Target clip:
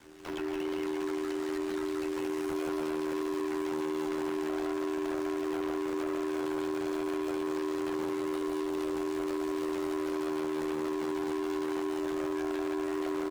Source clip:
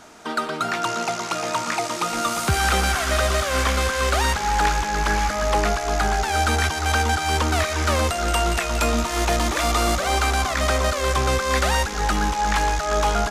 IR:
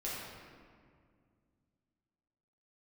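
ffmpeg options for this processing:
-filter_complex "[0:a]highpass=f=40:w=0.5412,highpass=f=40:w=1.3066,highshelf=f=2.2k:g=-7.5,aeval=exprs='abs(val(0))':c=same,acrusher=bits=5:mode=log:mix=0:aa=0.000001,flanger=delay=19.5:depth=4.7:speed=0.61,aecho=1:1:167|334|501:0.708|0.17|0.0408,afreqshift=-290,asoftclip=type=tanh:threshold=-20.5dB,aeval=exprs='val(0)*sin(2*PI*34*n/s)':c=same,acrossover=split=280|1300[a][b][c];[a]acompressor=threshold=-44dB:ratio=4[d];[b]acompressor=threshold=-32dB:ratio=4[e];[c]acompressor=threshold=-47dB:ratio=4[f];[d][e][f]amix=inputs=3:normalize=0,asetrate=52444,aresample=44100,atempo=0.840896"

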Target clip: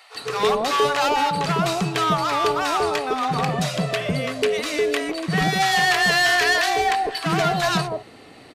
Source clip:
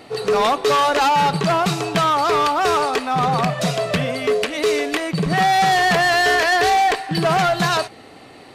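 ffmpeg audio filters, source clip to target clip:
-filter_complex "[0:a]asettb=1/sr,asplit=3[a][b][c];[a]atrim=end=5.604[d];[b]atrim=start=5.6:end=6.66,asetpts=PTS-STARTPTS,afade=t=in:d=0.004:c=qsin,afade=t=out:st=1.056:d=0.004:c=qsin,tiltshelf=f=970:g=-3.5[e];[c]atrim=start=6.656[f];[d][e]acrossfade=d=0.004:c1=hsin:c2=qsin[g];[g][f]acrossfade=d=0.004:c1=qsin:c2=hsin,acrossover=split=820[h][i];[h]adelay=150[j];[j][i]amix=inputs=2:normalize=0,volume=-2dB"

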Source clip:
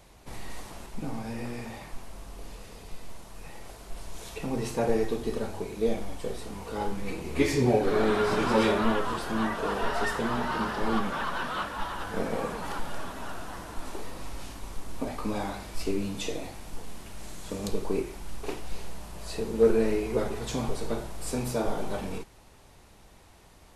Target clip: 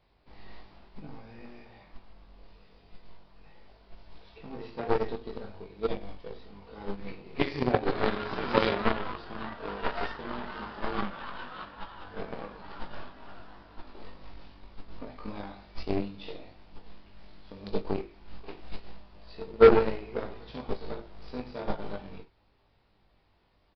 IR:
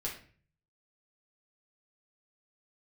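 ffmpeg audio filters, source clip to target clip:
-af "aecho=1:1:20|64:0.708|0.316,aeval=exprs='0.299*(cos(1*acos(clip(val(0)/0.299,-1,1)))-cos(1*PI/2))+0.0841*(cos(3*acos(clip(val(0)/0.299,-1,1)))-cos(3*PI/2))':c=same,aresample=11025,aresample=44100,volume=1.5dB"

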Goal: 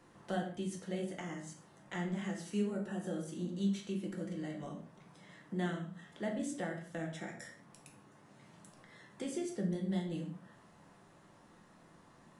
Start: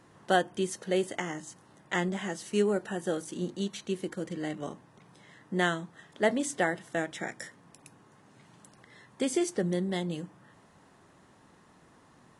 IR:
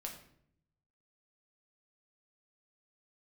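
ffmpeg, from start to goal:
-filter_complex "[0:a]acrossover=split=240[a][b];[b]acompressor=threshold=-45dB:ratio=2[c];[a][c]amix=inputs=2:normalize=0,flanger=delay=7.5:depth=3.5:regen=88:speed=1.8:shape=triangular[d];[1:a]atrim=start_sample=2205,afade=t=out:st=0.24:d=0.01,atrim=end_sample=11025[e];[d][e]afir=irnorm=-1:irlink=0,volume=4.5dB"

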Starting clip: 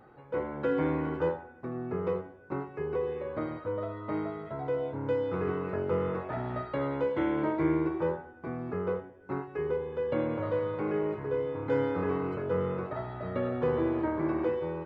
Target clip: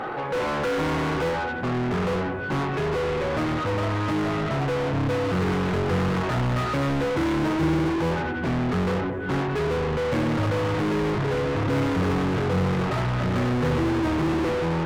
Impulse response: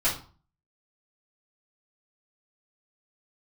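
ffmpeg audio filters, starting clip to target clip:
-filter_complex "[0:a]asubboost=boost=9.5:cutoff=180,asplit=2[a][b];[b]highpass=f=720:p=1,volume=39dB,asoftclip=type=tanh:threshold=-19dB[c];[a][c]amix=inputs=2:normalize=0,lowpass=f=2.6k:p=1,volume=-6dB"

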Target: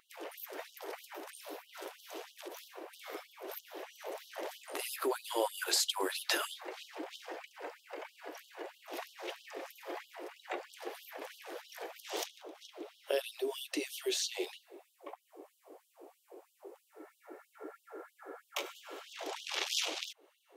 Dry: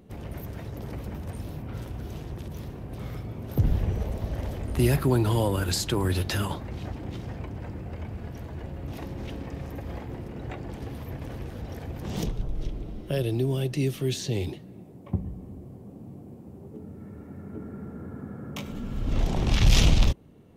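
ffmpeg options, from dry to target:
-af "acompressor=threshold=-27dB:ratio=2.5,afftfilt=real='re*gte(b*sr/1024,290*pow(2900/290,0.5+0.5*sin(2*PI*3.1*pts/sr)))':imag='im*gte(b*sr/1024,290*pow(2900/290,0.5+0.5*sin(2*PI*3.1*pts/sr)))':win_size=1024:overlap=0.75,volume=2dB"

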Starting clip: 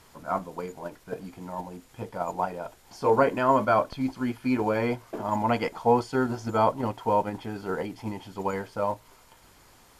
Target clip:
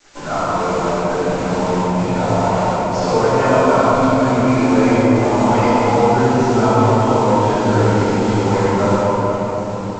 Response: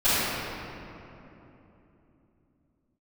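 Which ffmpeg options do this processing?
-filter_complex "[0:a]acompressor=threshold=-37dB:ratio=3,aresample=16000,acrusher=bits=7:mix=0:aa=0.000001,aresample=44100[a];[1:a]atrim=start_sample=2205,asetrate=22491,aresample=44100[b];[a][b]afir=irnorm=-1:irlink=0,volume=-1dB"

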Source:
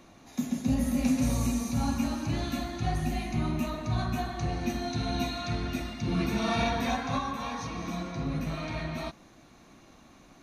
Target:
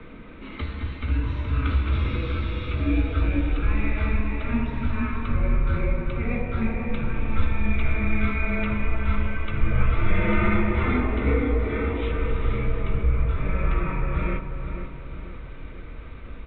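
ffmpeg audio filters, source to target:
-filter_complex "[0:a]bandreject=f=85.37:t=h:w=4,bandreject=f=170.74:t=h:w=4,bandreject=f=256.11:t=h:w=4,bandreject=f=341.48:t=h:w=4,bandreject=f=426.85:t=h:w=4,bandreject=f=512.22:t=h:w=4,bandreject=f=597.59:t=h:w=4,bandreject=f=682.96:t=h:w=4,bandreject=f=768.33:t=h:w=4,bandreject=f=853.7:t=h:w=4,bandreject=f=939.07:t=h:w=4,bandreject=f=1.02444k:t=h:w=4,bandreject=f=1.10981k:t=h:w=4,bandreject=f=1.19518k:t=h:w=4,bandreject=f=1.28055k:t=h:w=4,bandreject=f=1.36592k:t=h:w=4,bandreject=f=1.45129k:t=h:w=4,bandreject=f=1.53666k:t=h:w=4,bandreject=f=1.62203k:t=h:w=4,bandreject=f=1.7074k:t=h:w=4,bandreject=f=1.79277k:t=h:w=4,bandreject=f=1.87814k:t=h:w=4,bandreject=f=1.96351k:t=h:w=4,bandreject=f=2.04888k:t=h:w=4,bandreject=f=2.13425k:t=h:w=4,bandreject=f=2.21962k:t=h:w=4,bandreject=f=2.30499k:t=h:w=4,bandreject=f=2.39036k:t=h:w=4,bandreject=f=2.47573k:t=h:w=4,bandreject=f=2.5611k:t=h:w=4,bandreject=f=2.64647k:t=h:w=4,bandreject=f=2.73184k:t=h:w=4,bandreject=f=2.81721k:t=h:w=4,bandreject=f=2.90258k:t=h:w=4,bandreject=f=2.98795k:t=h:w=4,bandreject=f=3.07332k:t=h:w=4,afreqshift=-20,equalizer=f=200:t=o:w=0.33:g=-9,equalizer=f=315:t=o:w=0.33:g=8,equalizer=f=800:t=o:w=0.33:g=6,equalizer=f=1.6k:t=o:w=0.33:g=-8,asplit=2[a][b];[b]acompressor=threshold=-41dB:ratio=6,volume=3dB[c];[a][c]amix=inputs=2:normalize=0,asubboost=boost=9:cutoff=200,asetrate=27915,aresample=44100,asplit=2[d][e];[e]adelay=489,lowpass=f=1.9k:p=1,volume=-7.5dB,asplit=2[f][g];[g]adelay=489,lowpass=f=1.9k:p=1,volume=0.51,asplit=2[h][i];[i]adelay=489,lowpass=f=1.9k:p=1,volume=0.51,asplit=2[j][k];[k]adelay=489,lowpass=f=1.9k:p=1,volume=0.51,asplit=2[l][m];[m]adelay=489,lowpass=f=1.9k:p=1,volume=0.51,asplit=2[n][o];[o]adelay=489,lowpass=f=1.9k:p=1,volume=0.51[p];[d][f][h][j][l][n][p]amix=inputs=7:normalize=0,highpass=f=170:t=q:w=0.5412,highpass=f=170:t=q:w=1.307,lowpass=f=3.1k:t=q:w=0.5176,lowpass=f=3.1k:t=q:w=0.7071,lowpass=f=3.1k:t=q:w=1.932,afreqshift=-220,volume=6.5dB"

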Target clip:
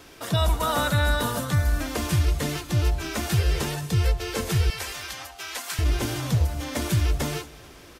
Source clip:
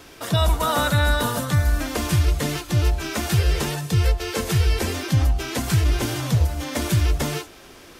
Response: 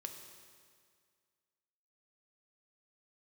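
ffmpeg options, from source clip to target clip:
-filter_complex "[0:a]asettb=1/sr,asplit=3[a][b][c];[a]atrim=end=4.704[d];[b]atrim=start=4.7:end=5.79,asetpts=PTS-STARTPTS,afade=t=in:d=0.004:c=qsin,afade=t=out:st=1.086:d=0.004:c=qsin,highpass=890[e];[c]atrim=start=5.786[f];[d][e]acrossfade=d=0.004:c1=hsin:c2=qsin[g];[g][f]acrossfade=d=0.004:c1=qsin:c2=hsin,aecho=1:1:218|436|654|872:0.0708|0.0382|0.0206|0.0111,volume=-3dB"

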